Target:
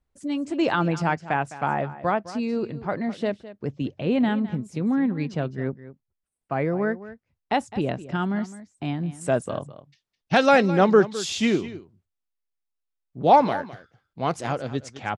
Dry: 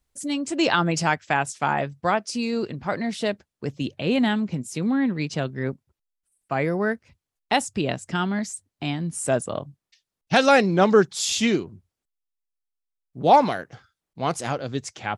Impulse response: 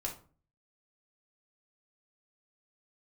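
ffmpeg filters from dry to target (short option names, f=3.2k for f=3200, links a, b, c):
-af "asetnsamples=n=441:p=0,asendcmd='9.21 lowpass f 3100',lowpass=f=1.3k:p=1,aecho=1:1:209:0.168"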